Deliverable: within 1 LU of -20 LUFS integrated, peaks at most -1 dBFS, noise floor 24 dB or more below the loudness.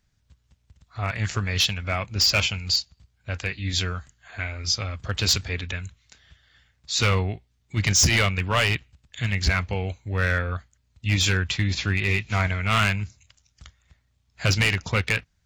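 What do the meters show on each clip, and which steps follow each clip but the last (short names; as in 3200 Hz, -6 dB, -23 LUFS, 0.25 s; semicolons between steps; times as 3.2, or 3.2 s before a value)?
clipped 0.6%; flat tops at -14.0 dBFS; loudness -24.0 LUFS; peak -14.0 dBFS; loudness target -20.0 LUFS
-> clip repair -14 dBFS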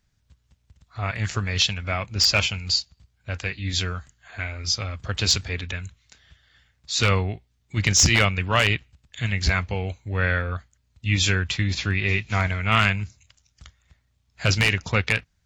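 clipped 0.0%; loudness -23.0 LUFS; peak -5.0 dBFS; loudness target -20.0 LUFS
-> gain +3 dB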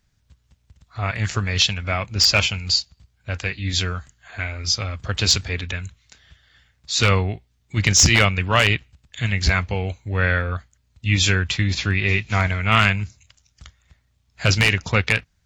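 loudness -20.0 LUFS; peak -2.0 dBFS; noise floor -65 dBFS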